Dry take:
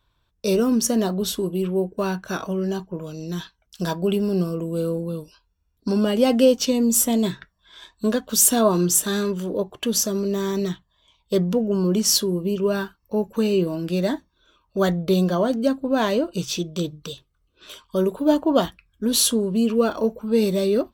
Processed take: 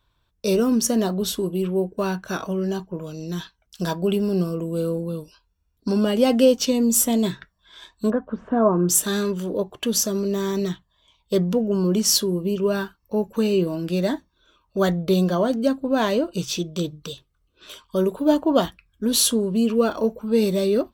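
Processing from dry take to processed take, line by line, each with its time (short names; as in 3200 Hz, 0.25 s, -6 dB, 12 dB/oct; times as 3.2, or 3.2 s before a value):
8.1–8.89 LPF 1500 Hz 24 dB/oct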